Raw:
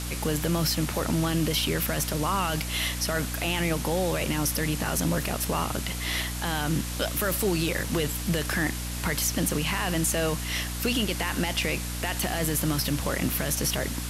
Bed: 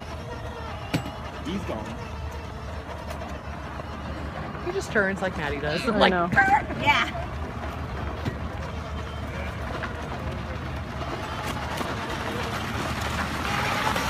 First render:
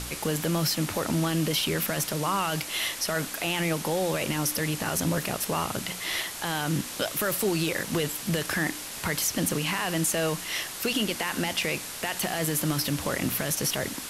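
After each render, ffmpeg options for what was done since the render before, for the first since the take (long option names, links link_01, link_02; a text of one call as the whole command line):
ffmpeg -i in.wav -af "bandreject=frequency=60:width_type=h:width=4,bandreject=frequency=120:width_type=h:width=4,bandreject=frequency=180:width_type=h:width=4,bandreject=frequency=240:width_type=h:width=4,bandreject=frequency=300:width_type=h:width=4" out.wav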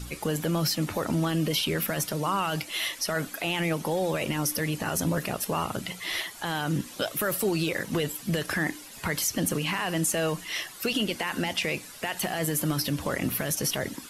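ffmpeg -i in.wav -af "afftdn=noise_reduction=12:noise_floor=-38" out.wav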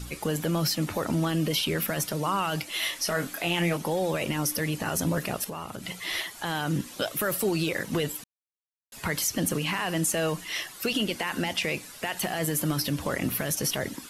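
ffmpeg -i in.wav -filter_complex "[0:a]asettb=1/sr,asplit=3[link_01][link_02][link_03];[link_01]atrim=end=2.804[link_04];[link_02]atrim=start=2.8:end=3.77,asetpts=PTS-STARTPTS,afade=type=in:duration=0.004:curve=qsin,afade=type=out:start_time=0.966:duration=0.004:curve=qsin,asplit=2[link_05][link_06];[link_06]adelay=23,volume=-5.5dB[link_07];[link_05][link_07]amix=inputs=2:normalize=0,atrim=end_sample=42777[link_08];[link_03]atrim=start=3.766[link_09];[link_04][link_08]acrossfade=duration=0.004:curve1=hsin:curve2=qsin[link_10];[link_10][link_09]acrossfade=duration=0.004:curve1=qsin:curve2=hsin,asettb=1/sr,asplit=3[link_11][link_12][link_13];[link_11]atrim=end=5.444[link_14];[link_12]atrim=start=5.44:end=5.87,asetpts=PTS-STARTPTS,afade=type=in:duration=0.004:curve=qsin,afade=type=out:start_time=0.426:duration=0.004:curve=qsin,acompressor=threshold=-35dB:ratio=2.5:attack=3.2:release=140:knee=1:detection=peak[link_15];[link_13]atrim=start=5.866[link_16];[link_14][link_15]acrossfade=duration=0.004:curve1=hsin:curve2=qsin[link_17];[link_17][link_16]acrossfade=duration=0.004:curve1=qsin:curve2=hsin,asplit=3[link_18][link_19][link_20];[link_18]atrim=end=8.24,asetpts=PTS-STARTPTS,afade=type=out:start_time=8.236:duration=0.004:curve=hsin[link_21];[link_19]atrim=start=8.24:end=8.92,asetpts=PTS-STARTPTS,volume=0[link_22];[link_20]atrim=start=8.92,asetpts=PTS-STARTPTS,afade=type=in:duration=0.004:curve=hsin[link_23];[link_21][link_22][link_23]concat=n=3:v=0:a=1" out.wav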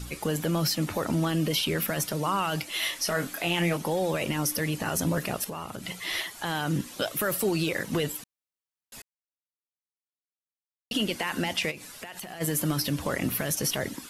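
ffmpeg -i in.wav -filter_complex "[0:a]asplit=3[link_01][link_02][link_03];[link_01]afade=type=out:start_time=11.7:duration=0.02[link_04];[link_02]acompressor=threshold=-35dB:ratio=12:attack=3.2:release=140:knee=1:detection=peak,afade=type=in:start_time=11.7:duration=0.02,afade=type=out:start_time=12.4:duration=0.02[link_05];[link_03]afade=type=in:start_time=12.4:duration=0.02[link_06];[link_04][link_05][link_06]amix=inputs=3:normalize=0,asplit=3[link_07][link_08][link_09];[link_07]atrim=end=9.02,asetpts=PTS-STARTPTS,afade=type=out:start_time=9.016:duration=0.004:curve=hsin[link_10];[link_08]atrim=start=9.02:end=10.91,asetpts=PTS-STARTPTS,volume=0[link_11];[link_09]atrim=start=10.91,asetpts=PTS-STARTPTS,afade=type=in:duration=0.004:curve=hsin[link_12];[link_10][link_11][link_12]concat=n=3:v=0:a=1" out.wav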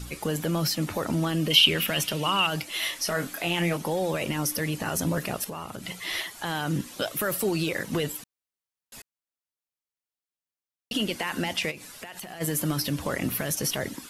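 ffmpeg -i in.wav -filter_complex "[0:a]asettb=1/sr,asplit=3[link_01][link_02][link_03];[link_01]atrim=end=1.504[link_04];[link_02]atrim=start=1.5:end=2.47,asetpts=PTS-STARTPTS,afade=type=in:duration=0.004:curve=qsin,afade=type=out:start_time=0.966:duration=0.004:curve=qsin,equalizer=frequency=2900:width=2.4:gain=15[link_05];[link_03]atrim=start=2.466[link_06];[link_04][link_05]acrossfade=duration=0.004:curve1=hsin:curve2=qsin[link_07];[link_07][link_06]acrossfade=duration=0.004:curve1=qsin:curve2=hsin" out.wav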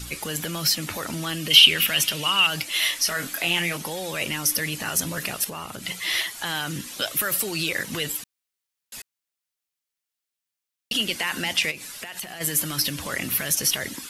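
ffmpeg -i in.wav -filter_complex "[0:a]acrossover=split=1500[link_01][link_02];[link_01]alimiter=level_in=1dB:limit=-24dB:level=0:latency=1,volume=-1dB[link_03];[link_02]acontrast=83[link_04];[link_03][link_04]amix=inputs=2:normalize=0" out.wav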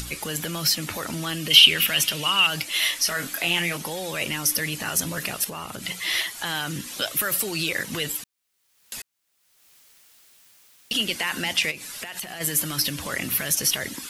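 ffmpeg -i in.wav -af "acompressor=mode=upward:threshold=-30dB:ratio=2.5" out.wav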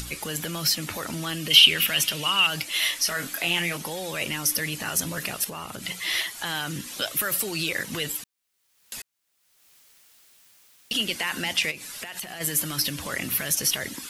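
ffmpeg -i in.wav -af "volume=-1.5dB" out.wav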